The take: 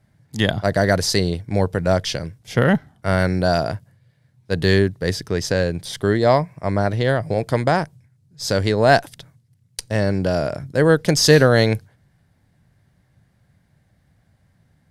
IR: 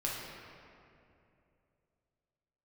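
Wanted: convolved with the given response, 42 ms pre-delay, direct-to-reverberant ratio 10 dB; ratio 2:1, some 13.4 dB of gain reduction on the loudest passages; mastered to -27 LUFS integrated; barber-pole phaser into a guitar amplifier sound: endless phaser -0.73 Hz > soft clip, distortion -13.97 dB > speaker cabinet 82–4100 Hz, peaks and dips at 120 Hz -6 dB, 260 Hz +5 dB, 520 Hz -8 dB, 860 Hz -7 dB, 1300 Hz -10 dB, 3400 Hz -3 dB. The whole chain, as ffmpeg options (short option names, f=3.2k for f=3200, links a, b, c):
-filter_complex "[0:a]acompressor=threshold=-33dB:ratio=2,asplit=2[a][b];[1:a]atrim=start_sample=2205,adelay=42[c];[b][c]afir=irnorm=-1:irlink=0,volume=-14.5dB[d];[a][d]amix=inputs=2:normalize=0,asplit=2[e][f];[f]afreqshift=-0.73[g];[e][g]amix=inputs=2:normalize=1,asoftclip=threshold=-25.5dB,highpass=82,equalizer=f=120:t=q:w=4:g=-6,equalizer=f=260:t=q:w=4:g=5,equalizer=f=520:t=q:w=4:g=-8,equalizer=f=860:t=q:w=4:g=-7,equalizer=f=1.3k:t=q:w=4:g=-10,equalizer=f=3.4k:t=q:w=4:g=-3,lowpass=f=4.1k:w=0.5412,lowpass=f=4.1k:w=1.3066,volume=10.5dB"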